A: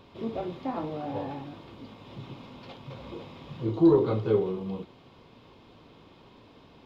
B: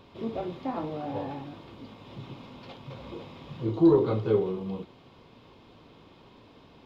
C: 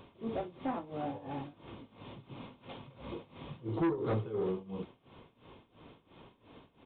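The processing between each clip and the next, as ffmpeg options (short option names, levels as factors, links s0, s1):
-af anull
-af "tremolo=f=2.9:d=0.88,aresample=8000,asoftclip=type=tanh:threshold=0.0501,aresample=44100"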